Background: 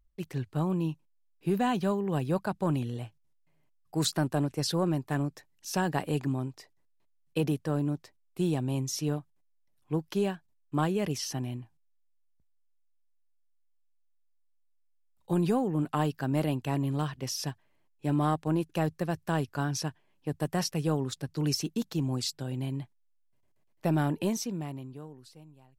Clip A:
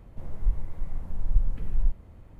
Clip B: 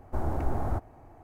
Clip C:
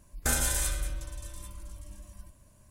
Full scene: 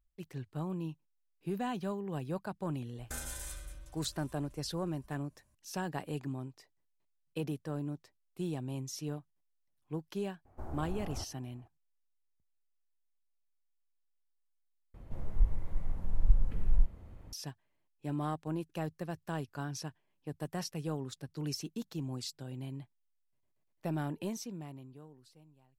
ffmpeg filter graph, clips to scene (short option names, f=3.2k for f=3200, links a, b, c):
-filter_complex "[0:a]volume=-8.5dB,asplit=2[a][b];[a]atrim=end=14.944[c];[1:a]atrim=end=2.39,asetpts=PTS-STARTPTS,volume=-2dB[d];[b]atrim=start=17.326[e];[3:a]atrim=end=2.7,asetpts=PTS-STARTPTS,volume=-14dB,afade=t=in:d=0.004:c=hsin,afade=t=out:st=2.696:d=0.004:c=hsin,adelay=2850[f];[2:a]atrim=end=1.23,asetpts=PTS-STARTPTS,volume=-12.5dB,afade=t=in:d=0.004:c=hsin,afade=t=out:st=1.226:d=0.004:c=hsin,adelay=10450[g];[c][d]acrossfade=d=0.004:c1=hsin:c2=hsin[h];[h][e]acrossfade=d=0.004:c1=hsin:c2=hsin[i];[i][f][g]amix=inputs=3:normalize=0"